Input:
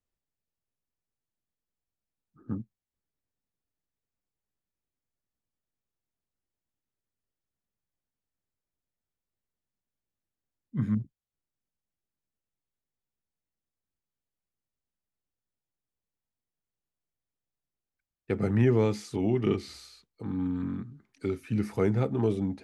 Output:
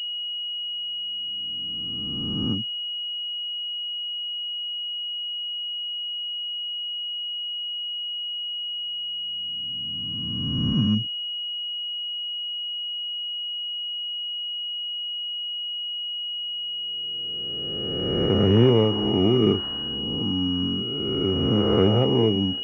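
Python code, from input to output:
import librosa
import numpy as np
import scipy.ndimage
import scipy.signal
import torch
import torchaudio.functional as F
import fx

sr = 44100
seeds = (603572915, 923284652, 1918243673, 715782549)

y = fx.spec_swells(x, sr, rise_s=2.16)
y = np.repeat(y[::2], 2)[:len(y)]
y = fx.pwm(y, sr, carrier_hz=2900.0)
y = y * librosa.db_to_amplitude(4.0)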